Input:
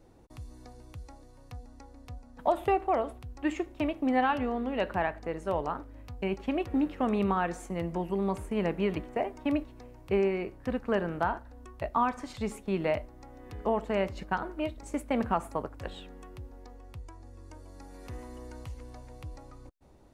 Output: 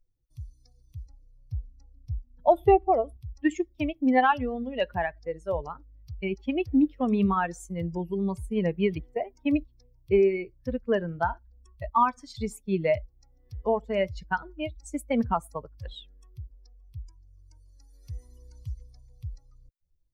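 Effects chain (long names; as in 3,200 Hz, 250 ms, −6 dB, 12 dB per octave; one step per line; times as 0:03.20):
spectral dynamics exaggerated over time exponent 2
0:01.06–0:03.17: tilt shelving filter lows +7 dB, about 770 Hz
level +8 dB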